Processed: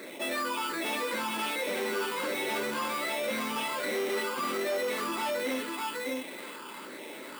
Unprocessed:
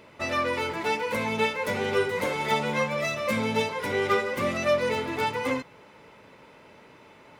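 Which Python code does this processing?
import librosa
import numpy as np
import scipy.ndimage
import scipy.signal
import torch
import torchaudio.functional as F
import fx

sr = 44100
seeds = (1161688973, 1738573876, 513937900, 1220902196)

p1 = fx.echo_wet_highpass(x, sr, ms=325, feedback_pct=36, hz=1900.0, wet_db=-11.5)
p2 = fx.phaser_stages(p1, sr, stages=8, low_hz=560.0, high_hz=1300.0, hz=1.3, feedback_pct=25)
p3 = fx.sample_hold(p2, sr, seeds[0], rate_hz=6000.0, jitter_pct=0)
p4 = fx.high_shelf(p3, sr, hz=6600.0, db=10.0)
p5 = fx.notch(p4, sr, hz=440.0, q=12.0)
p6 = p5 + fx.echo_single(p5, sr, ms=603, db=-5.5, dry=0)
p7 = np.clip(p6, -10.0 ** (-26.5 / 20.0), 10.0 ** (-26.5 / 20.0))
p8 = scipy.signal.sosfilt(scipy.signal.butter(4, 280.0, 'highpass', fs=sr, output='sos'), p7)
p9 = fx.high_shelf(p8, sr, hz=3100.0, db=-10.5)
y = fx.env_flatten(p9, sr, amount_pct=50)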